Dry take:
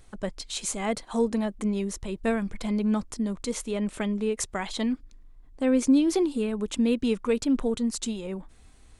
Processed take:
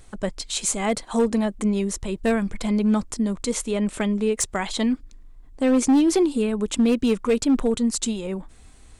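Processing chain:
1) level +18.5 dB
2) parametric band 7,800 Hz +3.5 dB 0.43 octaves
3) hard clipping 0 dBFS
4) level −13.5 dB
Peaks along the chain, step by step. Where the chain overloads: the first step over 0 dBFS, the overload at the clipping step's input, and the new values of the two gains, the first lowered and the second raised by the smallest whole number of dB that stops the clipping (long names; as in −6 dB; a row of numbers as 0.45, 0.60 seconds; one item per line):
+6.0, +6.0, 0.0, −13.5 dBFS
step 1, 6.0 dB
step 1 +12.5 dB, step 4 −7.5 dB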